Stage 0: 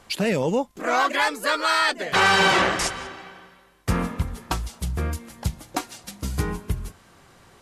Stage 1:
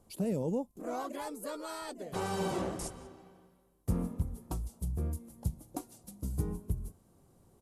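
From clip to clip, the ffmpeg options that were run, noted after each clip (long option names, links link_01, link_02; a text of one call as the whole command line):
ffmpeg -i in.wav -af "firequalizer=gain_entry='entry(230,0);entry(1700,-22);entry(9900,-1)':delay=0.05:min_phase=1,volume=-7.5dB" out.wav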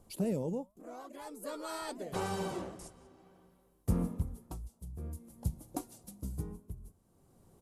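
ffmpeg -i in.wav -af "flanger=delay=0.1:depth=6.2:regen=90:speed=0.86:shape=triangular,tremolo=f=0.52:d=0.74,volume=6dB" out.wav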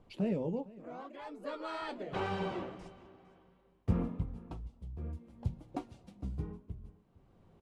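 ffmpeg -i in.wav -af "flanger=delay=6.2:depth=8.8:regen=-53:speed=0.71:shape=triangular,lowpass=frequency=2800:width_type=q:width=1.5,aecho=1:1:457:0.0891,volume=4dB" out.wav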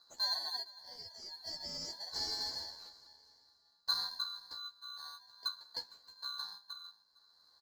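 ffmpeg -i in.wav -filter_complex "[0:a]afftfilt=real='real(if(lt(b,736),b+184*(1-2*mod(floor(b/184),2)),b),0)':imag='imag(if(lt(b,736),b+184*(1-2*mod(floor(b/184),2)),b),0)':win_size=2048:overlap=0.75,asplit=2[link_01][link_02];[link_02]acrusher=samples=17:mix=1:aa=0.000001,volume=-10dB[link_03];[link_01][link_03]amix=inputs=2:normalize=0,asplit=2[link_04][link_05];[link_05]adelay=12,volume=-2.5dB[link_06];[link_04][link_06]amix=inputs=2:normalize=0,volume=-6dB" out.wav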